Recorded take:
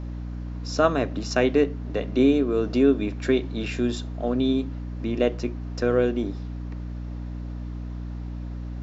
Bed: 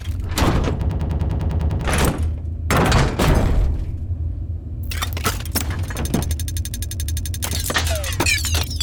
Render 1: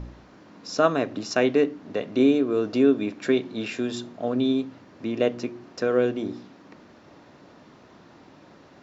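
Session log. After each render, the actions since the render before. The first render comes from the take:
hum removal 60 Hz, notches 6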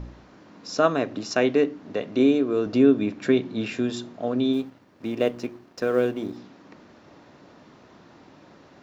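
0:02.66–0:03.90: bass and treble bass +6 dB, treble −2 dB
0:04.53–0:06.37: mu-law and A-law mismatch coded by A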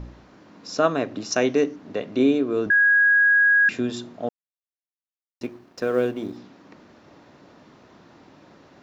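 0:01.32–0:01.76: parametric band 6,000 Hz +14.5 dB 0.26 octaves
0:02.70–0:03.69: beep over 1,650 Hz −13.5 dBFS
0:04.29–0:05.41: silence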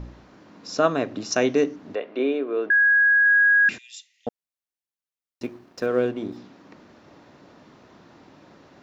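0:01.95–0:03.26: Chebyshev band-pass filter 420–2,700 Hz
0:03.78–0:04.27: Chebyshev high-pass with heavy ripple 1,900 Hz, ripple 6 dB
0:05.86–0:06.32: high-frequency loss of the air 71 metres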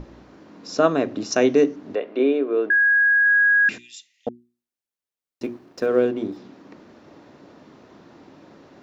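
parametric band 330 Hz +5 dB 1.7 octaves
mains-hum notches 60/120/180/240/300/360 Hz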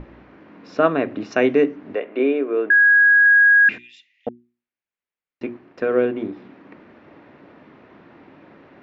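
low-pass with resonance 2,300 Hz, resonance Q 1.8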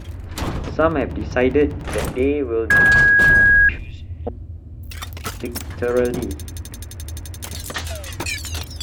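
mix in bed −7.5 dB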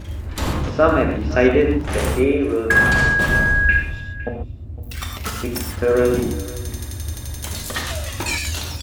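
single-tap delay 510 ms −19 dB
reverb whose tail is shaped and stops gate 160 ms flat, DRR 0.5 dB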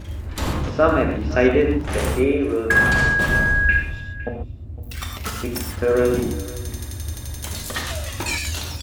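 level −1.5 dB

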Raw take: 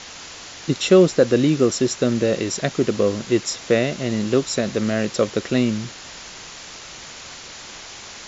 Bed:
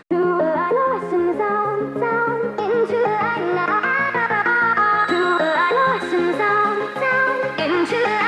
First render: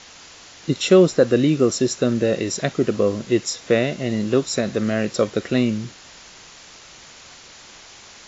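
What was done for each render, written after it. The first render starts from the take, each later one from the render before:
noise reduction from a noise print 6 dB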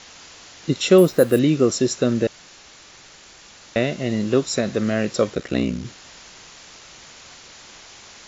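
0:00.98–0:01.39: bad sample-rate conversion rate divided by 4×, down filtered, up hold
0:02.27–0:03.76: fill with room tone
0:05.34–0:05.85: ring modulation 32 Hz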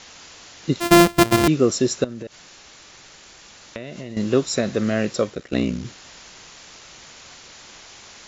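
0:00.80–0:01.48: samples sorted by size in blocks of 128 samples
0:02.04–0:04.17: downward compressor 8 to 1, threshold −29 dBFS
0:05.07–0:05.52: fade out, to −10.5 dB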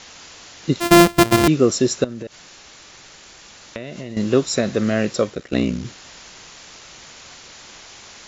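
level +2 dB
brickwall limiter −2 dBFS, peak gain reduction 1 dB

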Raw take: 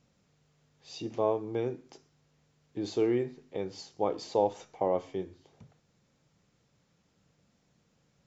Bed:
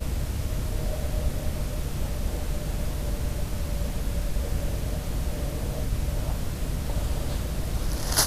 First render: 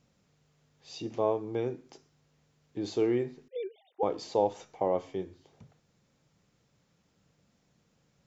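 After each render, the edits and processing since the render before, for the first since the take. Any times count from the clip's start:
0:03.48–0:04.03: three sine waves on the formant tracks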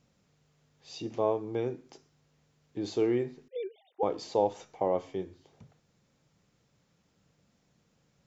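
no processing that can be heard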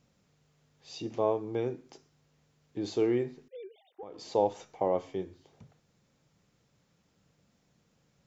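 0:03.42–0:04.31: downward compressor 5 to 1, threshold −42 dBFS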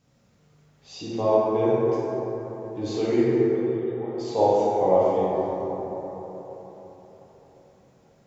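dense smooth reverb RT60 4.4 s, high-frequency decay 0.3×, DRR −8.5 dB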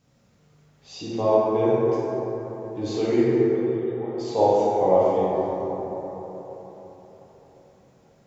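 level +1 dB

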